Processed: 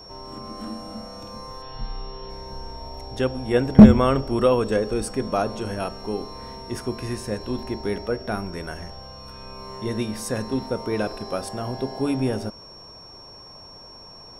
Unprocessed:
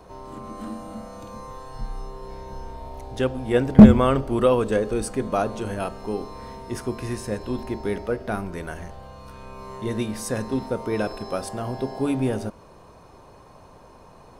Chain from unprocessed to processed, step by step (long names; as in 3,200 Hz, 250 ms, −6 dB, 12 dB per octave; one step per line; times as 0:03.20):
0:01.62–0:02.30: high shelf with overshoot 4,800 Hz −13 dB, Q 3
steady tone 5,500 Hz −43 dBFS